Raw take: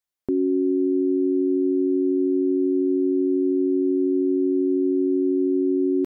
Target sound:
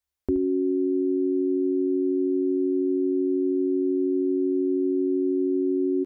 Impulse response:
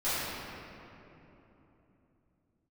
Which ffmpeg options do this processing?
-af "lowshelf=frequency=100:width_type=q:width=3:gain=8.5,aecho=1:1:74|148:0.251|0.0377"

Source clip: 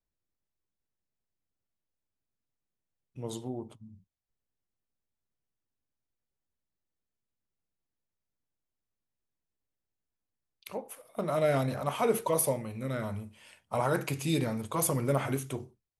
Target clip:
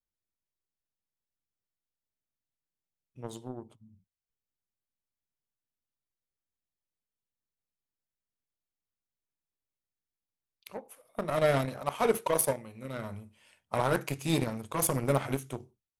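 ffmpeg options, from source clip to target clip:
ffmpeg -i in.wav -filter_complex "[0:a]asettb=1/sr,asplit=3[link_01][link_02][link_03];[link_01]atrim=end=11.654[link_04];[link_02]atrim=start=11.65:end=12.97,asetpts=PTS-STARTPTS,afade=type=in:duration=0.004:curve=qsin,afade=type=out:start_time=1.316:duration=0.004:curve=qsin,lowshelf=frequency=110:gain=-8.5[link_05];[link_03]atrim=start=12.966[link_06];[link_04][link_05]acrossfade=duration=0.004:curve1=hsin:curve2=qsin[link_07];[link_07][link_06]acrossfade=duration=0.004:curve1=qsin:curve2=hsin,aeval=exprs='0.178*(cos(1*acos(clip(val(0)/0.178,-1,1)))-cos(1*PI/2))+0.0158*(cos(7*acos(clip(val(0)/0.178,-1,1)))-cos(7*PI/2))':channel_layout=same,volume=1.5dB" out.wav

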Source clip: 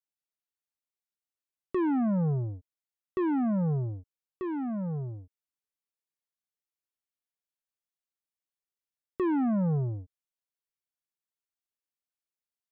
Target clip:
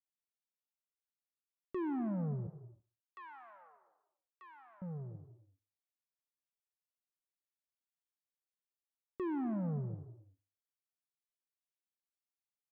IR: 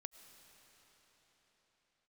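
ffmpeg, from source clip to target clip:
-filter_complex "[0:a]asettb=1/sr,asplit=3[link_01][link_02][link_03];[link_01]atrim=end=2.474[link_04];[link_02]atrim=start=2.47:end=4.82,asetpts=PTS-STARTPTS,afade=type=in:duration=0.004:curve=qsin,afade=type=out:start_time=2.346:duration=0.004:curve=qsin,highpass=frequency=940:width=0.5412,highpass=frequency=940:width=1.3066[link_05];[link_03]atrim=start=4.816[link_06];[link_04][link_05]acrossfade=duration=0.004:curve1=hsin:curve2=qsin[link_07];[link_07][link_06]acrossfade=duration=0.004:curve1=qsin:curve2=hsin,aecho=1:1:70|140|210:0.0891|0.033|0.0122[link_08];[1:a]atrim=start_sample=2205,afade=type=out:start_time=0.38:duration=0.01,atrim=end_sample=17199[link_09];[link_08][link_09]afir=irnorm=-1:irlink=0,volume=-4dB"

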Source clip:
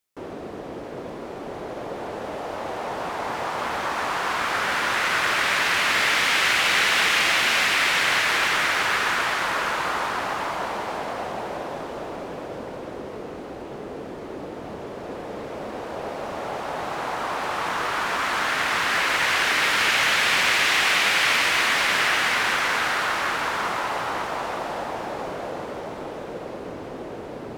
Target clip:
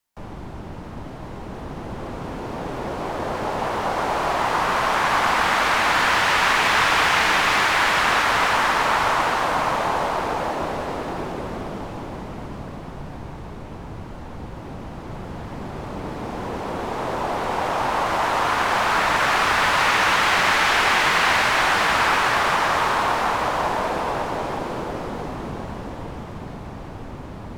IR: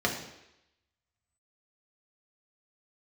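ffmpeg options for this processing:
-filter_complex "[0:a]afreqshift=-360,equalizer=frequency=910:width_type=o:width=1:gain=6,acrossover=split=180|480|7200[link_01][link_02][link_03][link_04];[link_04]asoftclip=type=tanh:threshold=-37dB[link_05];[link_01][link_02][link_03][link_05]amix=inputs=4:normalize=0"

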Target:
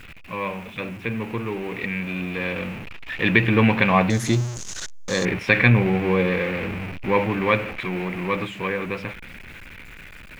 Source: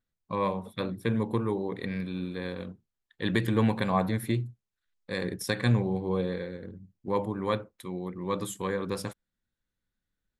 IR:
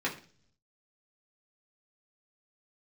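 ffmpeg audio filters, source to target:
-af "aeval=exprs='val(0)+0.5*0.0224*sgn(val(0))':channel_layout=same,dynaudnorm=framelen=240:gausssize=21:maxgain=12.5dB,asetnsamples=nb_out_samples=441:pad=0,asendcmd='4.1 lowpass f 6500;5.25 lowpass f 2400',lowpass=frequency=2500:width_type=q:width=6.2,acrusher=bits=9:dc=4:mix=0:aa=0.000001,volume=-3dB"

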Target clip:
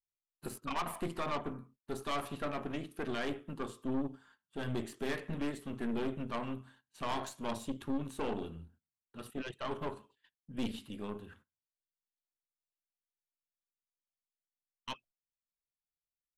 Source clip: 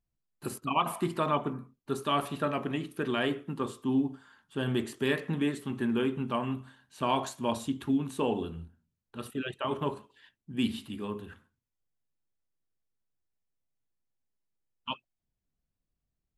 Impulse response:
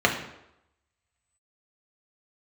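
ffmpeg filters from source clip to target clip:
-af "agate=range=-18dB:threshold=-56dB:ratio=16:detection=peak,aeval=exprs='(tanh(28.2*val(0)+0.75)-tanh(0.75))/28.2':channel_layout=same,volume=-1.5dB"

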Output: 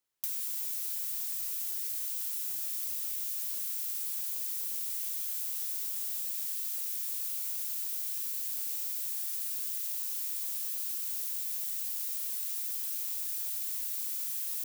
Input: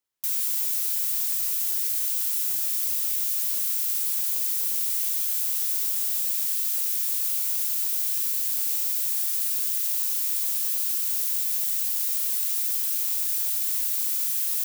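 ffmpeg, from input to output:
ffmpeg -i in.wav -filter_complex "[0:a]acrossover=split=410[link_01][link_02];[link_02]acompressor=threshold=-33dB:ratio=5[link_03];[link_01][link_03]amix=inputs=2:normalize=0" out.wav

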